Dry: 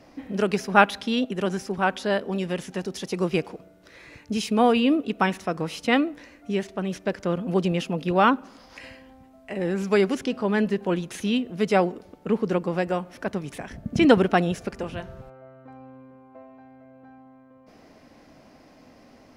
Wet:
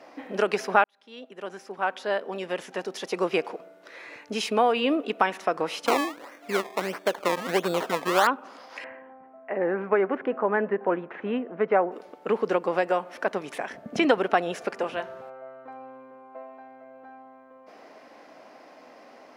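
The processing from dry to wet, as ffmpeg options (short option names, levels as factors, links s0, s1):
-filter_complex "[0:a]asettb=1/sr,asplit=3[s0][s1][s2];[s0]atrim=end=5.864[s3];[s1]atrim=start=5.86:end=8.27,asetpts=PTS-STARTPTS,afade=t=in:d=0.004:c=qsin,afade=t=out:st=2.406:d=0.004:c=qsin,acrusher=samples=21:mix=1:aa=0.000001:lfo=1:lforange=21:lforate=1.5[s4];[s2]atrim=start=8.266[s5];[s3][s4]acrossfade=d=0.004:c1=hsin:c2=qsin[s6];[s6][s5]acrossfade=d=0.004:c1=qsin:c2=hsin,asettb=1/sr,asplit=3[s7][s8][s9];[s7]atrim=end=8.844[s10];[s8]atrim=start=8.84:end=11.92,asetpts=PTS-STARTPTS,afade=t=in:d=0.004:c=qsin,afade=t=out:st=3.076:d=0.004:c=qsin,lowpass=f=1900:w=0.5412,lowpass=f=1900:w=1.3066[s11];[s9]atrim=start=11.916[s12];[s10][s11]acrossfade=d=0.004:c1=hsin:c2=qsin[s13];[s13][s12]acrossfade=d=0.004:c1=qsin:c2=hsin,asplit=2[s14][s15];[s14]atrim=end=0.84,asetpts=PTS-STARTPTS,afade=t=out:st=0.836:d=0.004:c=hsin[s16];[s15]atrim=start=0.84,asetpts=PTS-STARTPTS,afade=t=in:d=2.67[s17];[s16][s17]concat=n=2:v=0:a=1,highpass=520,highshelf=f=3100:g=-11,acompressor=threshold=0.0398:ratio=2.5,volume=2.51"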